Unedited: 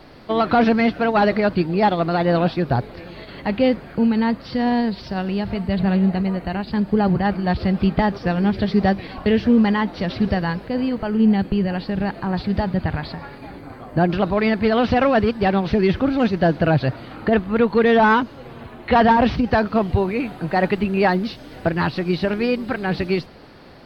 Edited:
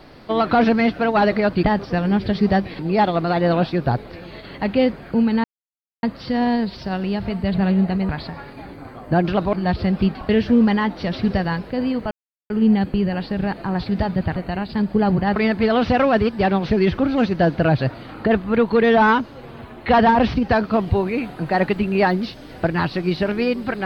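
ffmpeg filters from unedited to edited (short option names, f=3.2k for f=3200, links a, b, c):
-filter_complex "[0:a]asplit=10[a][b][c][d][e][f][g][h][i][j];[a]atrim=end=1.632[k];[b]atrim=start=7.958:end=9.122[l];[c]atrim=start=1.628:end=4.28,asetpts=PTS-STARTPTS,afade=t=out:st=2.648:d=0.004:c=hsin,apad=pad_dur=0.59[m];[d]atrim=start=4.28:end=6.342,asetpts=PTS-STARTPTS,afade=t=in:d=0.004:c=hsin[n];[e]atrim=start=12.938:end=14.382[o];[f]atrim=start=7.338:end=7.962[p];[g]atrim=start=9.118:end=11.08,asetpts=PTS-STARTPTS,afade=t=out:st=1.958:d=0.004:c=hsin,apad=pad_dur=0.39[q];[h]atrim=start=11.08:end=12.942,asetpts=PTS-STARTPTS,afade=t=in:d=0.004:c=hsin[r];[i]atrim=start=6.338:end=7.342[s];[j]atrim=start=14.378[t];[k][l]acrossfade=d=0.004:c1=hsin:c2=hsin[u];[m][n]concat=n=2:v=0:a=1[v];[u][v]acrossfade=d=0.004:c1=hsin:c2=hsin[w];[w][o]acrossfade=d=0.004:c1=hsin:c2=hsin[x];[x][p]acrossfade=d=0.004:c1=hsin:c2=hsin[y];[q][r]concat=n=2:v=0:a=1[z];[y][z]acrossfade=d=0.004:c1=hsin:c2=hsin[aa];[aa][s]acrossfade=d=0.004:c1=hsin:c2=hsin[ab];[ab][t]acrossfade=d=0.004:c1=hsin:c2=hsin"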